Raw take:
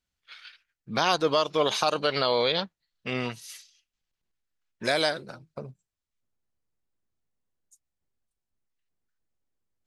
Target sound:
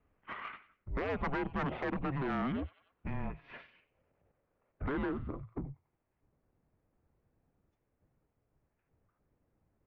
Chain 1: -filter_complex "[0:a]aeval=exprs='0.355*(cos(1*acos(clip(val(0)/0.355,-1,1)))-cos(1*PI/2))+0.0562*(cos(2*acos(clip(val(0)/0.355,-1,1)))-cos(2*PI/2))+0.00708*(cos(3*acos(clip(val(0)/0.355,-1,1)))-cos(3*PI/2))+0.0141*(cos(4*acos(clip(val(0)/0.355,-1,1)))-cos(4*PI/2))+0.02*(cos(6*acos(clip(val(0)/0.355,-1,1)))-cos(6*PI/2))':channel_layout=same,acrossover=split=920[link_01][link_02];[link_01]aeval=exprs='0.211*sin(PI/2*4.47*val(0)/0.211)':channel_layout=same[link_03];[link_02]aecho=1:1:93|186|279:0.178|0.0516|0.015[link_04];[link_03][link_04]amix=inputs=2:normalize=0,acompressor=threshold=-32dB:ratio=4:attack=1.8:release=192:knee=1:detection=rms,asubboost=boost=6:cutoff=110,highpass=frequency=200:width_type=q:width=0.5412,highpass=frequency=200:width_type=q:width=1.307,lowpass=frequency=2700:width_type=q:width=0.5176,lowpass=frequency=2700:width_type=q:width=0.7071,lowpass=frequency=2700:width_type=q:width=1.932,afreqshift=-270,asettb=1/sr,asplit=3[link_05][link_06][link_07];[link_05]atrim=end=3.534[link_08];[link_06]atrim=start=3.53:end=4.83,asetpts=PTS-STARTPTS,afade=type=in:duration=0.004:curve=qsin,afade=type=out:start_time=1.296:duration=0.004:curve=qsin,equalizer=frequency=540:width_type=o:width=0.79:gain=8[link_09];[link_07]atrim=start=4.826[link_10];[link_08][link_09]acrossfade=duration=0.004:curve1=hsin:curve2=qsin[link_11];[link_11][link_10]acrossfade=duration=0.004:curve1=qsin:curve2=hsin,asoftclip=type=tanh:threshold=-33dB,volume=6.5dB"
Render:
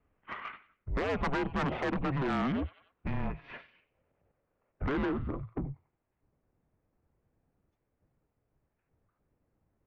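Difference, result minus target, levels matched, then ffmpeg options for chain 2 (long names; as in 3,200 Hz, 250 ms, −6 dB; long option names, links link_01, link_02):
downward compressor: peak gain reduction −6 dB
-filter_complex "[0:a]aeval=exprs='0.355*(cos(1*acos(clip(val(0)/0.355,-1,1)))-cos(1*PI/2))+0.0562*(cos(2*acos(clip(val(0)/0.355,-1,1)))-cos(2*PI/2))+0.00708*(cos(3*acos(clip(val(0)/0.355,-1,1)))-cos(3*PI/2))+0.0141*(cos(4*acos(clip(val(0)/0.355,-1,1)))-cos(4*PI/2))+0.02*(cos(6*acos(clip(val(0)/0.355,-1,1)))-cos(6*PI/2))':channel_layout=same,acrossover=split=920[link_01][link_02];[link_01]aeval=exprs='0.211*sin(PI/2*4.47*val(0)/0.211)':channel_layout=same[link_03];[link_02]aecho=1:1:93|186|279:0.178|0.0516|0.015[link_04];[link_03][link_04]amix=inputs=2:normalize=0,acompressor=threshold=-40dB:ratio=4:attack=1.8:release=192:knee=1:detection=rms,asubboost=boost=6:cutoff=110,highpass=frequency=200:width_type=q:width=0.5412,highpass=frequency=200:width_type=q:width=1.307,lowpass=frequency=2700:width_type=q:width=0.5176,lowpass=frequency=2700:width_type=q:width=0.7071,lowpass=frequency=2700:width_type=q:width=1.932,afreqshift=-270,asettb=1/sr,asplit=3[link_05][link_06][link_07];[link_05]atrim=end=3.534[link_08];[link_06]atrim=start=3.53:end=4.83,asetpts=PTS-STARTPTS,afade=type=in:duration=0.004:curve=qsin,afade=type=out:start_time=1.296:duration=0.004:curve=qsin,equalizer=frequency=540:width_type=o:width=0.79:gain=8[link_09];[link_07]atrim=start=4.826[link_10];[link_08][link_09]acrossfade=duration=0.004:curve1=hsin:curve2=qsin[link_11];[link_11][link_10]acrossfade=duration=0.004:curve1=qsin:curve2=hsin,asoftclip=type=tanh:threshold=-33dB,volume=6.5dB"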